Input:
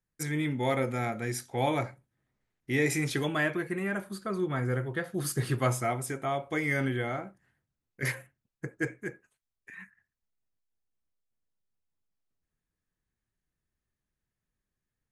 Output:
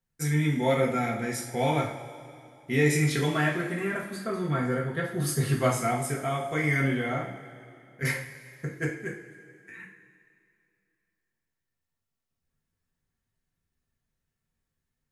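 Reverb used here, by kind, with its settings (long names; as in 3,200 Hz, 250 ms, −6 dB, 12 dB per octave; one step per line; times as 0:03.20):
coupled-rooms reverb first 0.41 s, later 2.6 s, from −16 dB, DRR −2 dB
level −1 dB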